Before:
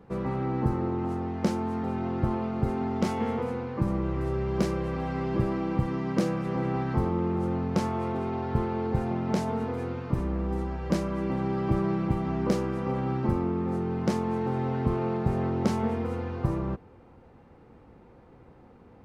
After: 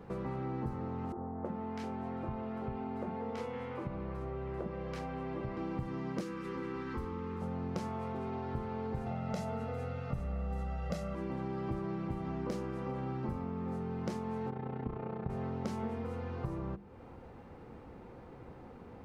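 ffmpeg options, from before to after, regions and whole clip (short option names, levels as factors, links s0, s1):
-filter_complex "[0:a]asettb=1/sr,asplit=3[s0][s1][s2];[s0]atrim=end=1.124[s3];[s1]atrim=start=1.12:end=5.57,asetpts=PTS-STARTPTS,afade=t=in:d=0.004:c=qsin,afade=t=out:st=4.446:d=0.004:c=qsin,bass=f=250:g=-5,treble=f=4000:g=-11,acrossover=split=270|1300[s4][s5][s6];[s4]adelay=50[s7];[s6]adelay=330[s8];[s7][s5][s8]amix=inputs=3:normalize=0,atrim=end_sample=196245[s9];[s2]atrim=start=5.566[s10];[s3][s9]acrossfade=d=0.004:c1=hsin:c2=qsin[s11];[s11][s10]acrossfade=d=0.004:c1=qsin:c2=hsin,asettb=1/sr,asplit=3[s12][s13][s14];[s12]atrim=end=6.214[s15];[s13]atrim=start=6.21:end=7.42,asetpts=PTS-STARTPTS,afade=t=in:d=0.004:c=qsin,afade=t=out:st=1.206:d=0.004:c=qsin,asuperstop=centerf=670:order=4:qfactor=1.5,equalizer=f=140:t=o:w=0.85:g=-14[s16];[s14]atrim=start=7.416[s17];[s15][s16]acrossfade=d=0.004:c1=hsin:c2=qsin[s18];[s18][s17]acrossfade=d=0.004:c1=qsin:c2=hsin,asettb=1/sr,asplit=3[s19][s20][s21];[s19]atrim=end=9.064[s22];[s20]atrim=start=9.06:end=11.15,asetpts=PTS-STARTPTS,afade=t=in:d=0.004:c=qsin,afade=t=out:st=2.086:d=0.004:c=qsin,aecho=1:1:1.5:0.88,atrim=end_sample=92169,aeval=exprs='val(0)+0.00178*sin(2*PI*2700*n/s)':c=same[s23];[s21]atrim=start=11.146[s24];[s22][s23]acrossfade=d=0.004:c1=hsin:c2=qsin[s25];[s25][s24]acrossfade=d=0.004:c1=qsin:c2=hsin,asettb=1/sr,asplit=3[s26][s27][s28];[s26]atrim=end=14.504[s29];[s27]atrim=start=14.5:end=15.3,asetpts=PTS-STARTPTS,afade=t=in:d=0.004:c=qsin,afade=t=out:st=0.796:d=0.004:c=qsin,lowpass=2900,tremolo=f=30:d=0.824[s30];[s28]atrim=start=15.296[s31];[s29][s30]acrossfade=d=0.004:c1=hsin:c2=qsin[s32];[s32][s31]acrossfade=d=0.004:c1=qsin:c2=hsin,bandreject=f=50:t=h:w=6,bandreject=f=100:t=h:w=6,bandreject=f=150:t=h:w=6,bandreject=f=200:t=h:w=6,bandreject=f=250:t=h:w=6,bandreject=f=300:t=h:w=6,bandreject=f=350:t=h:w=6,acompressor=threshold=0.00631:ratio=2.5,volume=1.41"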